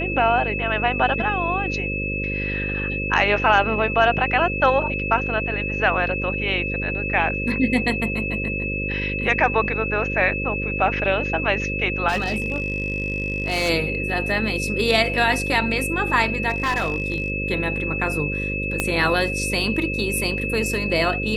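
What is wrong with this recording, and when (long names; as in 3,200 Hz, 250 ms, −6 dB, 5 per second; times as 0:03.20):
mains buzz 50 Hz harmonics 11 −28 dBFS
whistle 2,600 Hz −26 dBFS
0:12.08–0:13.70: clipping −18 dBFS
0:16.49–0:17.30: clipping −17.5 dBFS
0:18.80: click −6 dBFS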